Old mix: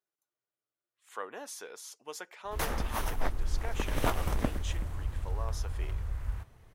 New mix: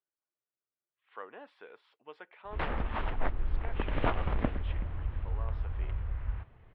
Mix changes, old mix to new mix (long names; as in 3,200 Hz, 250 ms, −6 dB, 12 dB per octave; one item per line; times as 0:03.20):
speech −5.0 dB
master: add inverse Chebyshev low-pass filter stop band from 5,900 Hz, stop band 40 dB